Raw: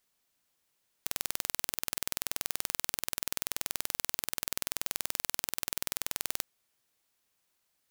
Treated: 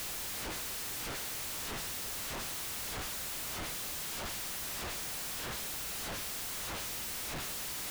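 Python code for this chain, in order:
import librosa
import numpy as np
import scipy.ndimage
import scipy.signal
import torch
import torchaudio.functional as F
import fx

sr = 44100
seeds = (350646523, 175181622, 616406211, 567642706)

p1 = fx.quant_dither(x, sr, seeds[0], bits=8, dither='triangular')
p2 = x + F.gain(torch.from_numpy(p1), -7.5).numpy()
p3 = fx.paulstretch(p2, sr, seeds[1], factor=13.0, window_s=0.05, from_s=3.6)
p4 = fx.schmitt(p3, sr, flips_db=-51.5)
p5 = fx.low_shelf(p4, sr, hz=96.0, db=8.5)
y = F.gain(torch.from_numpy(p5), -6.0).numpy()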